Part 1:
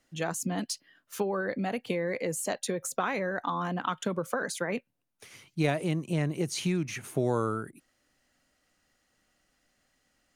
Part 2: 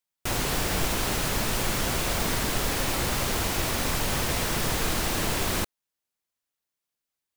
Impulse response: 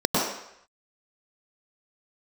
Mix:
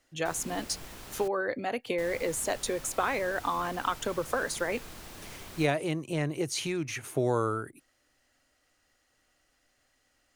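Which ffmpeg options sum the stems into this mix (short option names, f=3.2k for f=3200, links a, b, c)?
-filter_complex "[0:a]equalizer=f=190:t=o:w=0.47:g=-13,volume=1.5dB[a];[1:a]volume=-19dB,asplit=3[b][c][d];[b]atrim=end=1.28,asetpts=PTS-STARTPTS,afade=t=out:st=1.276:d=0.004:c=hsin[e];[c]atrim=start=1.28:end=1.98,asetpts=PTS-STARTPTS,volume=0[f];[d]atrim=start=1.98,asetpts=PTS-STARTPTS,afade=t=in:d=0.004:c=hsin[g];[e][f][g]concat=n=3:v=0:a=1[h];[a][h]amix=inputs=2:normalize=0"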